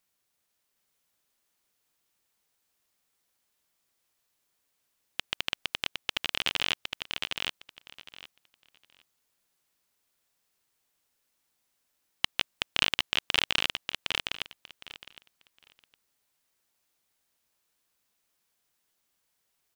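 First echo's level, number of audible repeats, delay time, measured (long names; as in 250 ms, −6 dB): −4.0 dB, 3, 761 ms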